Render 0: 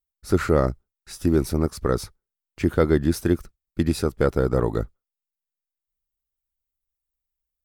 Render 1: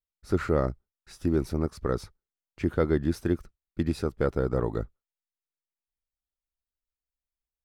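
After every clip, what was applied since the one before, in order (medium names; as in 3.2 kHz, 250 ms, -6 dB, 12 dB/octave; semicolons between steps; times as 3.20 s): treble shelf 6.4 kHz -11 dB; trim -5.5 dB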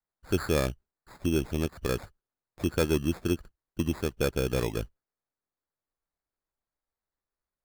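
sample-and-hold 15×; trim -1.5 dB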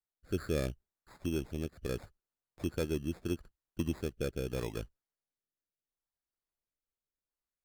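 rotary cabinet horn 0.75 Hz; trim -5 dB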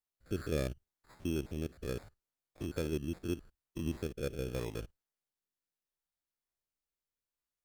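spectrogram pixelated in time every 50 ms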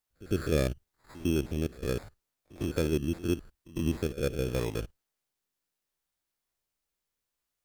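pre-echo 103 ms -19.5 dB; trim +7 dB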